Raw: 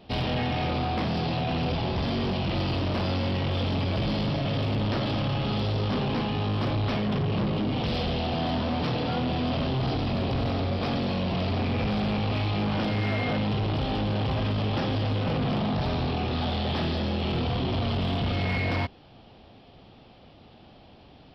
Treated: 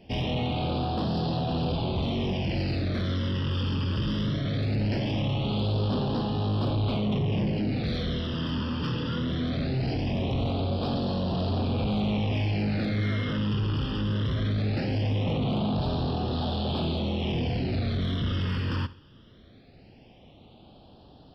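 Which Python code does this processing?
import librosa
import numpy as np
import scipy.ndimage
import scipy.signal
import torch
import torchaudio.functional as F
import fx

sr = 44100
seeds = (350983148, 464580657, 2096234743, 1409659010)

p1 = fx.phaser_stages(x, sr, stages=12, low_hz=700.0, high_hz=2200.0, hz=0.2, feedback_pct=0)
y = p1 + fx.echo_feedback(p1, sr, ms=67, feedback_pct=35, wet_db=-18, dry=0)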